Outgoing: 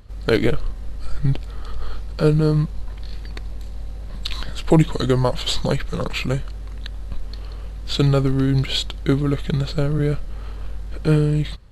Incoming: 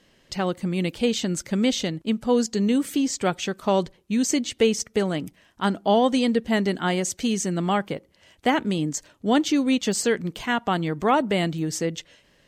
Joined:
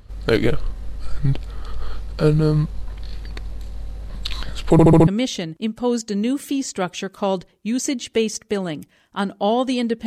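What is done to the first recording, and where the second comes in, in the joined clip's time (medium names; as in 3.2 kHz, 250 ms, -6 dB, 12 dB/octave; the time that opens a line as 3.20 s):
outgoing
4.72 s: stutter in place 0.07 s, 5 plays
5.07 s: go over to incoming from 1.52 s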